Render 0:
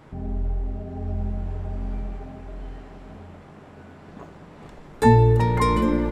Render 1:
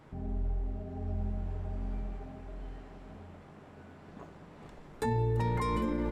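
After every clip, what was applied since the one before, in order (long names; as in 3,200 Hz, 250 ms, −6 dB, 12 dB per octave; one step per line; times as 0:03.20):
brickwall limiter −15.5 dBFS, peak gain reduction 11.5 dB
level −7 dB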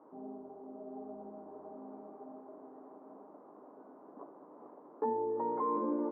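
Chebyshev band-pass filter 270–1,100 Hz, order 3
level +1 dB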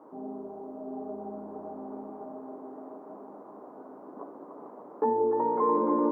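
echo with a time of its own for lows and highs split 510 Hz, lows 182 ms, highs 294 ms, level −6.5 dB
level +7 dB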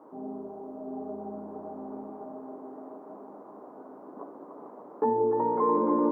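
dynamic equaliser 110 Hz, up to +8 dB, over −51 dBFS, Q 1.1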